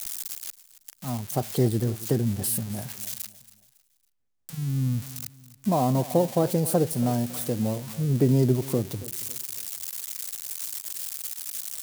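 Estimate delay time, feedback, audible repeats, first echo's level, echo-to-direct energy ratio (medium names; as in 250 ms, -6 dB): 277 ms, 36%, 2, -17.5 dB, -17.0 dB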